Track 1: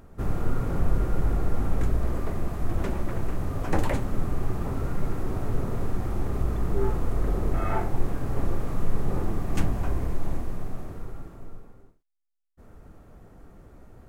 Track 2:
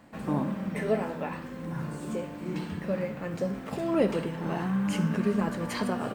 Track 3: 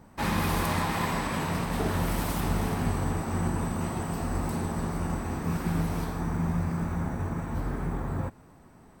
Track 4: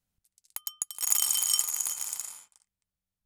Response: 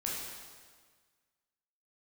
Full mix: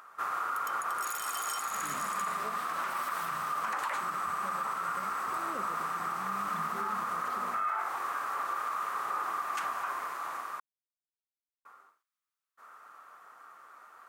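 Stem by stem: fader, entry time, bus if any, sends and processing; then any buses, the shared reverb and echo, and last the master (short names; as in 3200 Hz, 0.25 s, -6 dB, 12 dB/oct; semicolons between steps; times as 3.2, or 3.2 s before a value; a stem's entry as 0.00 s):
+2.0 dB, 0.00 s, muted 10.6–11.65, no send, resonant high-pass 1200 Hz, resonance Q 4.9
-19.0 dB, 1.55 s, no send, dry
-8.0 dB, 0.85 s, no send, steep high-pass 1200 Hz
-8.5 dB, 0.00 s, no send, dry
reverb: off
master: limiter -24.5 dBFS, peak gain reduction 13 dB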